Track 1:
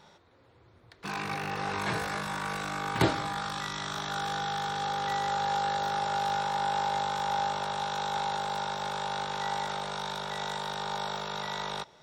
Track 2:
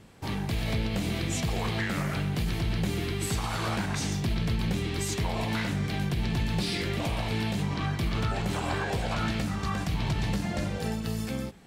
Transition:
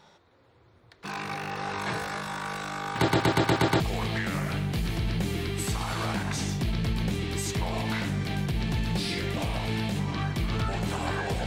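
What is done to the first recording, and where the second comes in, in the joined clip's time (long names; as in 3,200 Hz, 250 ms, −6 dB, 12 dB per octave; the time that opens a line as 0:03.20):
track 1
0:02.96: stutter in place 0.12 s, 7 plays
0:03.80: continue with track 2 from 0:01.43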